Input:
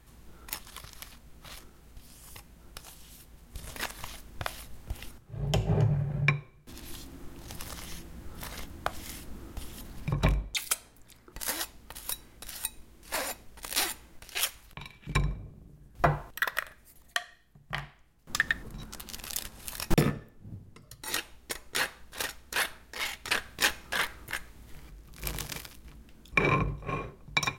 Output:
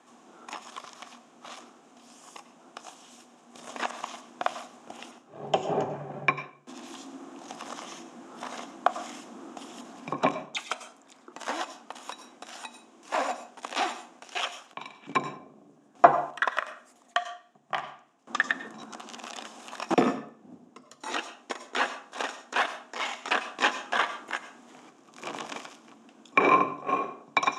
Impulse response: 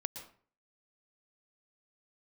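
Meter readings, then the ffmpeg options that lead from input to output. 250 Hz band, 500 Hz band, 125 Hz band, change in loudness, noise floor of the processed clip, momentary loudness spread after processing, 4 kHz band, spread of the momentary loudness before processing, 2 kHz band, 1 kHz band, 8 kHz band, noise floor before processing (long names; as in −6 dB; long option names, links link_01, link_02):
+1.5 dB, +7.0 dB, −14.5 dB, +2.5 dB, −59 dBFS, 20 LU, −1.5 dB, 21 LU, +1.5 dB, +9.5 dB, −7.5 dB, −57 dBFS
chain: -filter_complex "[0:a]asplit=2[link_01][link_02];[1:a]atrim=start_sample=2205,asetrate=52920,aresample=44100[link_03];[link_02][link_03]afir=irnorm=-1:irlink=0,volume=0.5dB[link_04];[link_01][link_04]amix=inputs=2:normalize=0,acrossover=split=4000[link_05][link_06];[link_06]acompressor=threshold=-38dB:ratio=4:attack=1:release=60[link_07];[link_05][link_07]amix=inputs=2:normalize=0,highpass=frequency=250:width=0.5412,highpass=frequency=250:width=1.3066,equalizer=frequency=250:width_type=q:width=4:gain=7,equalizer=frequency=730:width_type=q:width=4:gain=9,equalizer=frequency=1100:width_type=q:width=4:gain=6,equalizer=frequency=2000:width_type=q:width=4:gain=-5,equalizer=frequency=4400:width_type=q:width=4:gain=-8,equalizer=frequency=6900:width_type=q:width=4:gain=3,lowpass=frequency=7600:width=0.5412,lowpass=frequency=7600:width=1.3066,volume=-1.5dB"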